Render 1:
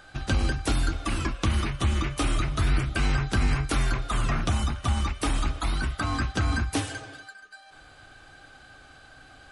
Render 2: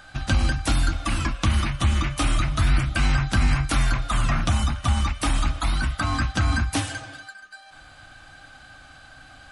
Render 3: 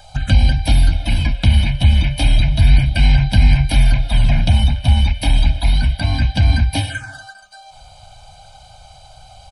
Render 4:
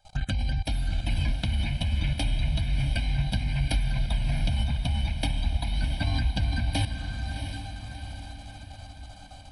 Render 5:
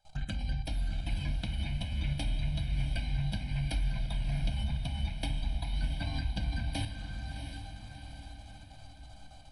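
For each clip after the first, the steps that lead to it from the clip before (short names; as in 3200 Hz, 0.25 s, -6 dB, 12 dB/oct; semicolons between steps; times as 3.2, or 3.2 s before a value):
bell 410 Hz -15 dB 0.39 oct; gain +4 dB
comb 1.3 ms, depth 93%; envelope phaser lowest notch 230 Hz, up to 1300 Hz, full sweep at -19 dBFS; gain +4.5 dB
level quantiser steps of 21 dB; diffused feedback echo 0.69 s, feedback 52%, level -7 dB; gain -4.5 dB
shoebox room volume 270 m³, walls furnished, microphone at 0.73 m; gain -8 dB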